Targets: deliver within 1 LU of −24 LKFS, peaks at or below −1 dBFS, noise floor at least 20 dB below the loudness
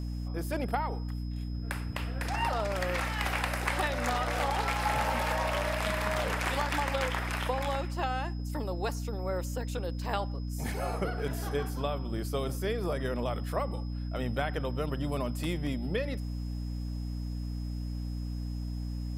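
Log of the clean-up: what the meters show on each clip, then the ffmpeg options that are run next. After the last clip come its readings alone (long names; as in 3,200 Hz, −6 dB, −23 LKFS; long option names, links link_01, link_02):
mains hum 60 Hz; hum harmonics up to 300 Hz; level of the hum −33 dBFS; interfering tone 5,100 Hz; level of the tone −55 dBFS; integrated loudness −33.0 LKFS; sample peak −12.0 dBFS; target loudness −24.0 LKFS
→ -af "bandreject=frequency=60:width_type=h:width=4,bandreject=frequency=120:width_type=h:width=4,bandreject=frequency=180:width_type=h:width=4,bandreject=frequency=240:width_type=h:width=4,bandreject=frequency=300:width_type=h:width=4"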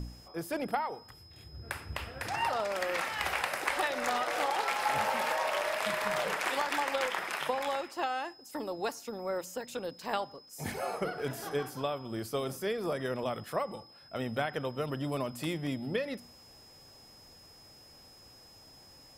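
mains hum none found; interfering tone 5,100 Hz; level of the tone −55 dBFS
→ -af "bandreject=frequency=5100:width=30"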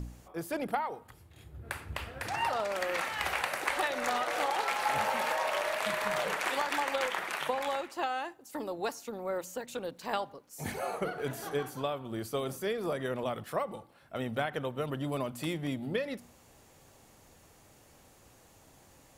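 interfering tone none found; integrated loudness −34.0 LKFS; sample peak −13.0 dBFS; target loudness −24.0 LKFS
→ -af "volume=10dB"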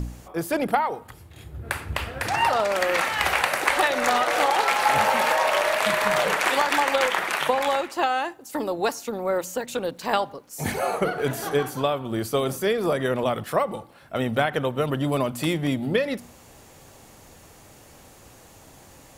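integrated loudness −24.0 LKFS; sample peak −3.0 dBFS; background noise floor −50 dBFS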